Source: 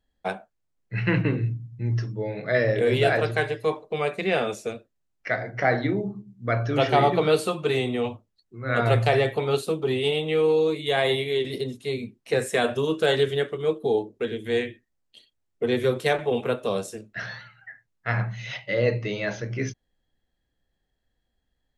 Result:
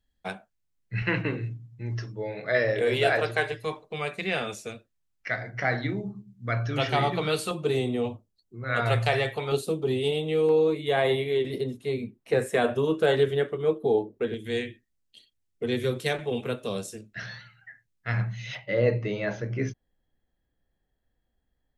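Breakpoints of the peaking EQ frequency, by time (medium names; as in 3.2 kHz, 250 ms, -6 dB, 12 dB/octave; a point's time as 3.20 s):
peaking EQ -8 dB 2.4 oct
600 Hz
from 1.02 s 160 Hz
from 3.52 s 470 Hz
from 7.51 s 1.8 kHz
from 8.64 s 290 Hz
from 9.52 s 1.6 kHz
from 10.49 s 5.6 kHz
from 14.34 s 810 Hz
from 18.55 s 5.3 kHz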